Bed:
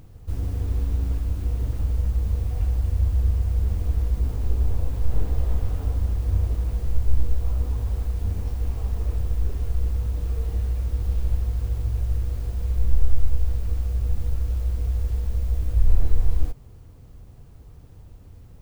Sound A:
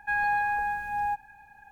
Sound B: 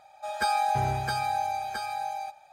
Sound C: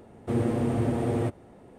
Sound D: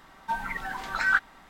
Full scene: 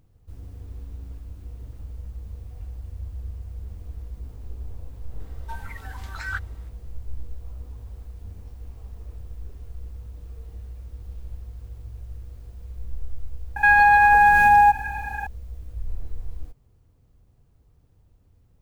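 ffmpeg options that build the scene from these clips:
-filter_complex "[0:a]volume=-13.5dB[a];[4:a]aemphasis=mode=production:type=cd[b];[1:a]alimiter=level_in=28.5dB:limit=-1dB:release=50:level=0:latency=1[c];[b]atrim=end=1.49,asetpts=PTS-STARTPTS,volume=-9dB,afade=t=in:d=0.004:c=hsin,afade=t=out:st=1.486:d=0.004:c=hsin,adelay=5200[d];[c]atrim=end=1.71,asetpts=PTS-STARTPTS,volume=-7.5dB,afade=t=in:d=0.004:c=hsin,afade=t=out:st=1.706:d=0.004:c=hsin,adelay=13560[e];[a][d][e]amix=inputs=3:normalize=0"

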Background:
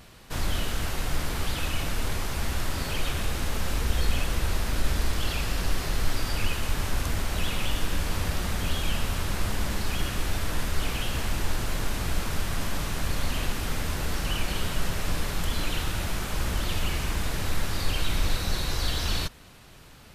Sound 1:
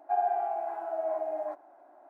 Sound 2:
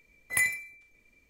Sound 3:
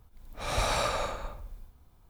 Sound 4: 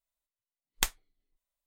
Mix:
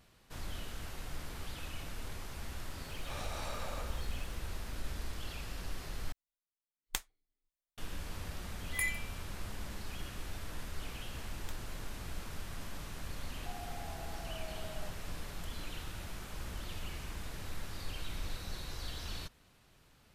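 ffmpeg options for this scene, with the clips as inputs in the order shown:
-filter_complex "[4:a]asplit=2[a][b];[0:a]volume=-14.5dB[c];[3:a]acompressor=threshold=-31dB:ratio=6:attack=3.2:release=140:knee=1:detection=peak[d];[b]alimiter=limit=-20dB:level=0:latency=1:release=71[e];[1:a]acompressor=threshold=-37dB:ratio=6:attack=3.2:release=140:knee=1:detection=peak[f];[c]asplit=2[g][h];[g]atrim=end=6.124[i];[a]atrim=end=1.66,asetpts=PTS-STARTPTS,volume=-8.5dB[j];[h]atrim=start=7.776[k];[d]atrim=end=2.09,asetpts=PTS-STARTPTS,volume=-8dB,afade=t=in:d=0.004:c=hsin,afade=t=out:st=2.086:d=0.004:c=hsin,adelay=2690[l];[2:a]atrim=end=1.29,asetpts=PTS-STARTPTS,volume=-8.5dB,afade=t=in:d=0.004:c=hsin,afade=t=out:st=1.286:d=0.004:c=hsin,adelay=371322S[m];[e]atrim=end=1.66,asetpts=PTS-STARTPTS,volume=-16.5dB,afade=t=in:d=0.004:c=hsin,afade=t=out:st=1.656:d=0.004:c=hsin,adelay=470106S[n];[f]atrim=end=2.09,asetpts=PTS-STARTPTS,volume=-9dB,afade=t=in:d=0.004:c=hsin,afade=t=out:st=2.086:d=0.004:c=hsin,adelay=13370[o];[i][j]acrossfade=d=0.004:c1=hsin:c2=hsin[p];[p][k]acrossfade=d=0.004:c1=hsin:c2=hsin[q];[q][l][m][n][o]amix=inputs=5:normalize=0"

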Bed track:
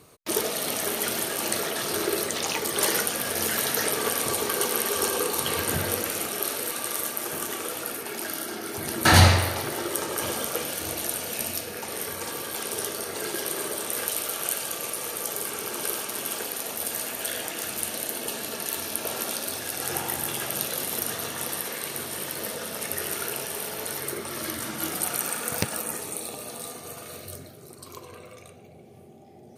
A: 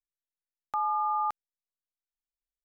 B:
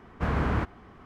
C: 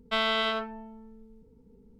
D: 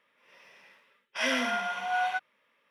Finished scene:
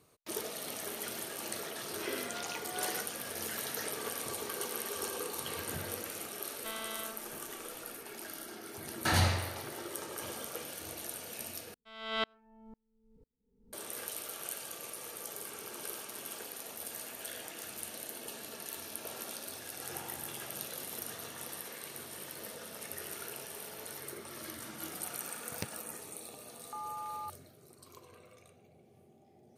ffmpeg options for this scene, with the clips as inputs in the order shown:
-filter_complex "[3:a]asplit=2[a][b];[0:a]volume=-12.5dB[c];[b]aeval=exprs='val(0)*pow(10,-38*if(lt(mod(-2*n/s,1),2*abs(-2)/1000),1-mod(-2*n/s,1)/(2*abs(-2)/1000),(mod(-2*n/s,1)-2*abs(-2)/1000)/(1-2*abs(-2)/1000))/20)':c=same[d];[c]asplit=2[e][f];[e]atrim=end=11.744[g];[d]atrim=end=1.99,asetpts=PTS-STARTPTS,volume=-1dB[h];[f]atrim=start=13.726[i];[4:a]atrim=end=2.7,asetpts=PTS-STARTPTS,volume=-14.5dB,afade=t=in:d=0.004:c=hsin,afade=t=out:st=2.696:d=0.004:c=hsin,adelay=830[j];[a]atrim=end=1.99,asetpts=PTS-STARTPTS,volume=-16dB,afade=t=in:d=0.004:c=hsin,afade=t=out:st=1.986:d=0.004:c=hsin,adelay=6530[k];[1:a]atrim=end=2.64,asetpts=PTS-STARTPTS,volume=-13dB,afade=t=in:d=0.004:c=hsin,afade=t=out:st=2.636:d=0.004:c=hsin,adelay=25990[l];[g][h]acrossfade=d=0.004:c1=hsin:c2=hsin[m];[m][i]acrossfade=d=0.004:c1=hsin:c2=hsin[n];[n][j][k][l]amix=inputs=4:normalize=0"

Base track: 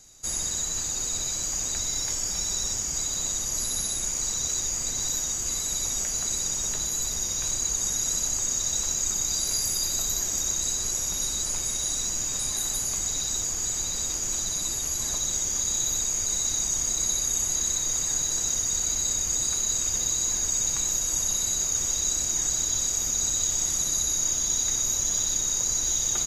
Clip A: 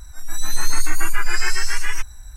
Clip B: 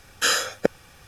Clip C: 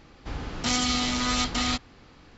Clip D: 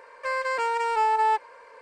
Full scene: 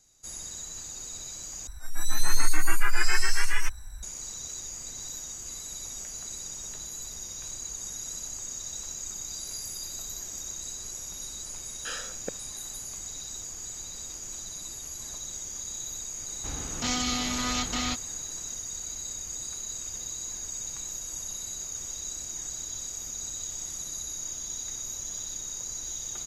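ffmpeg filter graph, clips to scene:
-filter_complex "[0:a]volume=-10.5dB[a];[2:a]lowpass=6k[b];[a]asplit=2[c][d];[c]atrim=end=1.674[e];[1:a]atrim=end=2.36,asetpts=PTS-STARTPTS,volume=-3dB[f];[d]atrim=start=4.026[g];[b]atrim=end=1.07,asetpts=PTS-STARTPTS,volume=-15.5dB,afade=t=in:d=0.004:c=hsin,afade=t=out:st=1.066:d=0.004:c=hsin,adelay=11630[h];[3:a]atrim=end=2.37,asetpts=PTS-STARTPTS,volume=-4dB,afade=t=in:d=0.004:c=hsin,afade=t=out:st=2.366:d=0.004:c=hsin,adelay=16180[i];[e][f]acrossfade=d=0.004:c1=hsin:c2=hsin[j];[j][g]acrossfade=d=0.004:c1=hsin:c2=hsin[k];[k][h][i]amix=inputs=3:normalize=0"

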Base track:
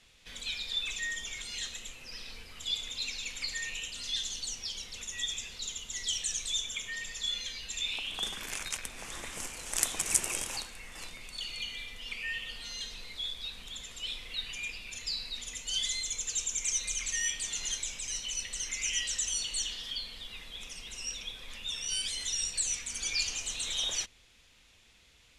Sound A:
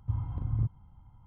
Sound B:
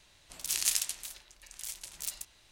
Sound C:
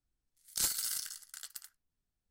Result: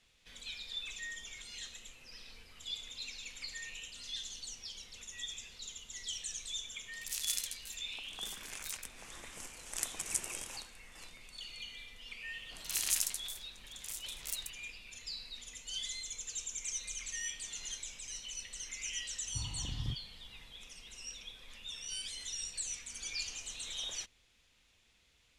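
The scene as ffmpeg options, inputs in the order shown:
-filter_complex "[2:a]asplit=2[a][b];[0:a]volume=-8dB[c];[a]tiltshelf=f=1.1k:g=-5.5[d];[b]acrossover=split=4500[e][f];[f]adelay=40[g];[e][g]amix=inputs=2:normalize=0[h];[1:a]equalizer=f=98:t=o:w=0.59:g=-11.5[i];[d]atrim=end=2.51,asetpts=PTS-STARTPTS,volume=-12.5dB,afade=t=in:d=0.004:c=hsin,afade=t=out:st=2.506:d=0.004:c=hsin,adelay=6620[j];[h]atrim=end=2.51,asetpts=PTS-STARTPTS,volume=-2dB,afade=t=in:d=0.004:c=hsin,afade=t=out:st=2.506:d=0.004:c=hsin,adelay=12210[k];[i]atrim=end=1.26,asetpts=PTS-STARTPTS,volume=-4dB,afade=t=in:d=0.004:c=hsin,afade=t=out:st=1.256:d=0.004:c=hsin,adelay=19270[l];[c][j][k][l]amix=inputs=4:normalize=0"

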